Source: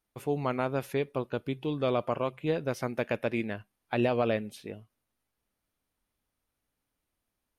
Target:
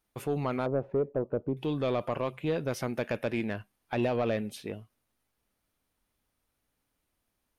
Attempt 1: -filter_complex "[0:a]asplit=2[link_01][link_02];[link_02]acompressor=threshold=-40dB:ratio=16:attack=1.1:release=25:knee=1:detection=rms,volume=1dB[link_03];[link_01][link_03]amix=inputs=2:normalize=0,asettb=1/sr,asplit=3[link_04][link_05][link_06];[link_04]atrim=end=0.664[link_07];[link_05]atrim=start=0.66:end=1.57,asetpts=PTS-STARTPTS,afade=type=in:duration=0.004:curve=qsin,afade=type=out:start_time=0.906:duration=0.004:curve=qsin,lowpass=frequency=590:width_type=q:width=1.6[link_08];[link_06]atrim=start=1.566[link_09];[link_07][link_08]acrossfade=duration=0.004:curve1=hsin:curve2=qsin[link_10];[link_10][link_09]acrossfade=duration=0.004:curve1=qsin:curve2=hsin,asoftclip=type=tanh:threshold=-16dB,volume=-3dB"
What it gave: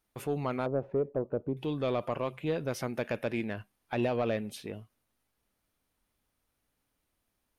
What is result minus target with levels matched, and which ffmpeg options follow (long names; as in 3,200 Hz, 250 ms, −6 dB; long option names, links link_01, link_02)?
downward compressor: peak gain reduction +8 dB
-filter_complex "[0:a]asplit=2[link_01][link_02];[link_02]acompressor=threshold=-31.5dB:ratio=16:attack=1.1:release=25:knee=1:detection=rms,volume=1dB[link_03];[link_01][link_03]amix=inputs=2:normalize=0,asettb=1/sr,asplit=3[link_04][link_05][link_06];[link_04]atrim=end=0.664[link_07];[link_05]atrim=start=0.66:end=1.57,asetpts=PTS-STARTPTS,afade=type=in:duration=0.004:curve=qsin,afade=type=out:start_time=0.906:duration=0.004:curve=qsin,lowpass=frequency=590:width_type=q:width=1.6[link_08];[link_06]atrim=start=1.566[link_09];[link_07][link_08]acrossfade=duration=0.004:curve1=hsin:curve2=qsin[link_10];[link_10][link_09]acrossfade=duration=0.004:curve1=qsin:curve2=hsin,asoftclip=type=tanh:threshold=-16dB,volume=-3dB"